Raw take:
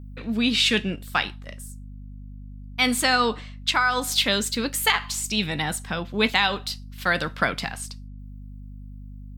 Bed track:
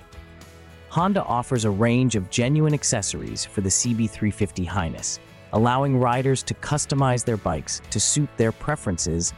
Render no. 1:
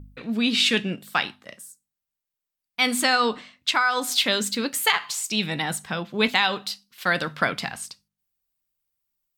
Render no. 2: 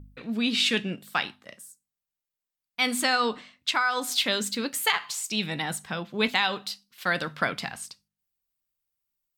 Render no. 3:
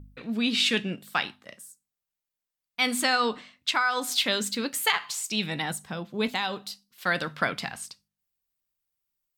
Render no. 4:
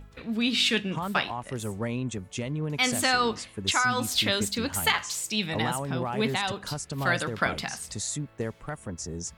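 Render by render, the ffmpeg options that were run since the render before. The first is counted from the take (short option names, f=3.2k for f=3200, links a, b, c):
-af "bandreject=f=50:t=h:w=4,bandreject=f=100:t=h:w=4,bandreject=f=150:t=h:w=4,bandreject=f=200:t=h:w=4,bandreject=f=250:t=h:w=4"
-af "volume=-3.5dB"
-filter_complex "[0:a]asettb=1/sr,asplit=3[a][b][c];[a]atrim=end=5.724[d];[b]atrim=start=5.72:end=7.03,asetpts=PTS-STARTPTS,afade=t=in:d=0.004:c=qsin,afade=t=out:st=1.306:d=0.004:c=qsin,equalizer=f=2.2k:w=0.48:g=-6.5[e];[c]atrim=start=7.026[f];[d][e]acrossfade=d=0.004:c1=hsin:c2=qsin[g];[g][f]acrossfade=d=0.004:c1=qsin:c2=hsin"
-filter_complex "[1:a]volume=-11.5dB[a];[0:a][a]amix=inputs=2:normalize=0"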